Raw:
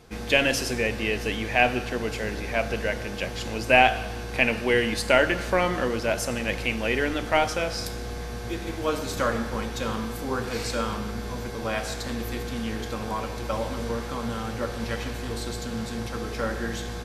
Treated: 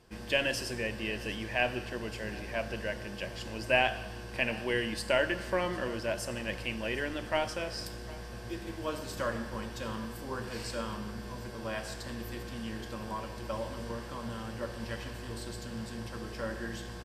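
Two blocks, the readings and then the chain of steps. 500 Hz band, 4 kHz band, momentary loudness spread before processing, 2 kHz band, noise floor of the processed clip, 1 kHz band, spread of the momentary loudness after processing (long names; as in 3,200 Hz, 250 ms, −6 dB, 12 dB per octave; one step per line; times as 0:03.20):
−8.0 dB, −7.0 dB, 11 LU, −8.5 dB, −43 dBFS, −10.5 dB, 11 LU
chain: EQ curve with evenly spaced ripples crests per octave 1.3, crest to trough 6 dB
single-tap delay 753 ms −20.5 dB
level −9 dB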